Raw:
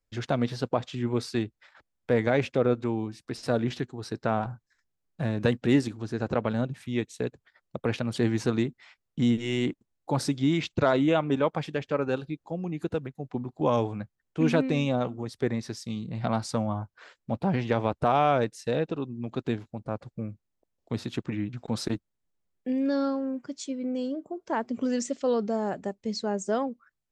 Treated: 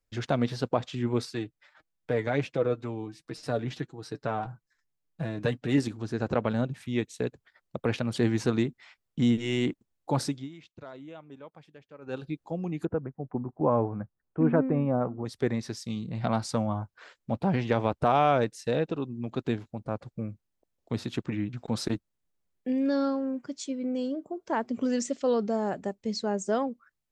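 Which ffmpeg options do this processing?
ffmpeg -i in.wav -filter_complex "[0:a]asettb=1/sr,asplit=3[link_01][link_02][link_03];[link_01]atrim=end=1.254[link_04];[link_02]atrim=start=1.25:end=5.78,asetpts=PTS-STARTPTS,afade=type=in:duration=0.004:curve=qsin,afade=type=out:start_time=4.526:duration=0.004:curve=qsin,flanger=delay=6:depth=1.1:regen=29:speed=1.5:shape=triangular[link_05];[link_03]atrim=start=5.776[link_06];[link_04][link_05]acrossfade=duration=0.004:curve1=hsin:curve2=qsin[link_07];[link_07][link_06]acrossfade=duration=0.004:curve1=qsin:curve2=hsin,asettb=1/sr,asplit=3[link_08][link_09][link_10];[link_08]atrim=end=12.854[link_11];[link_09]atrim=start=12.85:end=15.25,asetpts=PTS-STARTPTS,afade=type=in:duration=0.004:curve=qsin,afade=type=out:start_time=2.396:duration=0.004:curve=qsin,lowpass=frequency=1500:width=0.5412,lowpass=frequency=1500:width=1.3066[link_12];[link_10]atrim=start=15.246[link_13];[link_11][link_12]acrossfade=duration=0.004:curve1=hsin:curve2=qsin[link_14];[link_14][link_13]acrossfade=duration=0.004:curve1=qsin:curve2=hsin,asplit=3[link_15][link_16][link_17];[link_15]atrim=end=10.49,asetpts=PTS-STARTPTS,afade=type=out:start_time=10.19:duration=0.3:silence=0.0841395[link_18];[link_16]atrim=start=10.49:end=12.01,asetpts=PTS-STARTPTS,volume=-21.5dB[link_19];[link_17]atrim=start=12.01,asetpts=PTS-STARTPTS,afade=type=in:duration=0.3:silence=0.0841395[link_20];[link_18][link_19][link_20]concat=n=3:v=0:a=1" out.wav

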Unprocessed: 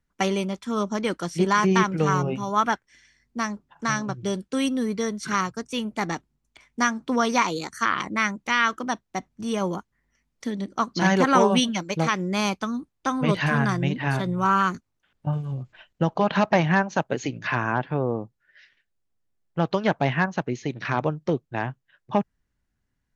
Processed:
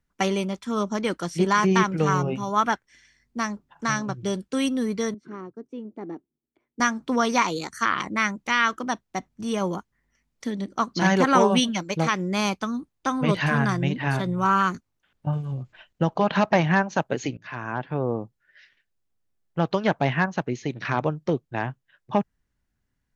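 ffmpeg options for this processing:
ffmpeg -i in.wav -filter_complex "[0:a]asettb=1/sr,asplit=3[link_01][link_02][link_03];[link_01]atrim=end=5.144[link_04];[link_02]atrim=start=5.14:end=6.8,asetpts=PTS-STARTPTS,afade=type=in:duration=0.004:curve=qsin,afade=type=out:start_time=1.656:duration=0.004:curve=qsin,bandpass=frequency=340:width_type=q:width=2.6[link_05];[link_03]atrim=start=6.796[link_06];[link_04][link_05]acrossfade=duration=0.004:curve1=hsin:curve2=qsin[link_07];[link_07][link_06]acrossfade=duration=0.004:curve1=qsin:curve2=hsin,asplit=2[link_08][link_09];[link_08]atrim=end=17.37,asetpts=PTS-STARTPTS,afade=type=out:start_time=17.366:duration=0.004:curve=hsin:silence=0.11885[link_10];[link_09]atrim=start=17.37,asetpts=PTS-STARTPTS,afade=type=in:duration=0.74:silence=0.11885[link_11];[link_10][link_11]concat=n=2:v=0:a=1" out.wav

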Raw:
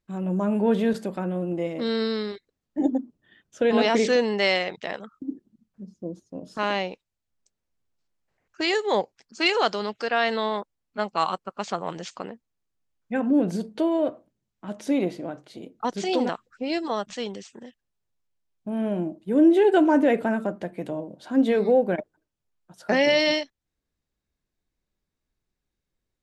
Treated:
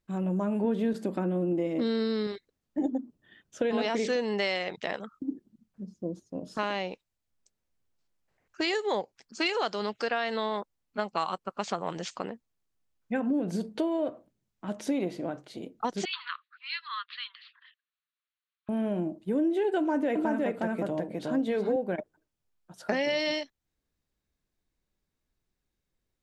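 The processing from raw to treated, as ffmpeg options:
ffmpeg -i in.wav -filter_complex "[0:a]asettb=1/sr,asplit=3[link_01][link_02][link_03];[link_01]atrim=end=0.644[link_04];[link_02]atrim=start=0.64:end=2.27,asetpts=PTS-STARTPTS,afade=type=in:duration=0.004:curve=qsin,afade=type=out:start_time=1.626:duration=0.004:curve=qsin,equalizer=frequency=290:width=1.5:gain=8.5[link_05];[link_03]atrim=start=2.266[link_06];[link_04][link_05]acrossfade=duration=0.004:curve1=hsin:curve2=qsin[link_07];[link_07][link_06]acrossfade=duration=0.004:curve1=qsin:curve2=hsin,asettb=1/sr,asplit=3[link_08][link_09][link_10];[link_08]atrim=end=16.054[link_11];[link_09]atrim=start=16.05:end=18.69,asetpts=PTS-STARTPTS,afade=type=in:duration=0.004:curve=qsin,afade=type=out:start_time=2.636:duration=0.004:curve=qsin,asuperpass=centerf=2200:order=20:qfactor=0.66[link_12];[link_10]atrim=start=18.686[link_13];[link_11][link_12]acrossfade=duration=0.004:curve1=hsin:curve2=qsin[link_14];[link_14][link_13]acrossfade=duration=0.004:curve1=qsin:curve2=hsin,asettb=1/sr,asplit=3[link_15][link_16][link_17];[link_15]atrim=end=19.794[link_18];[link_16]atrim=start=19.79:end=21.76,asetpts=PTS-STARTPTS,afade=type=in:duration=0.004:curve=qsin,afade=type=out:start_time=1.966:duration=0.004:curve=qsin,aecho=1:1:363:0.708,atrim=end_sample=86877[link_19];[link_17]atrim=start=21.756[link_20];[link_18][link_19]acrossfade=duration=0.004:curve1=hsin:curve2=qsin[link_21];[link_21][link_20]acrossfade=duration=0.004:curve1=qsin:curve2=hsin,acompressor=threshold=-26dB:ratio=4" out.wav

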